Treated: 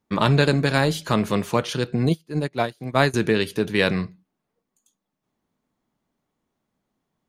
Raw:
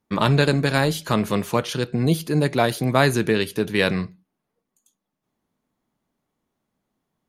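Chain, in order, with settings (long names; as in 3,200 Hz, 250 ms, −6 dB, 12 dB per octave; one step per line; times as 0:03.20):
parametric band 12,000 Hz −6 dB 0.54 octaves
0:02.09–0:03.14: expander for the loud parts 2.5 to 1, over −33 dBFS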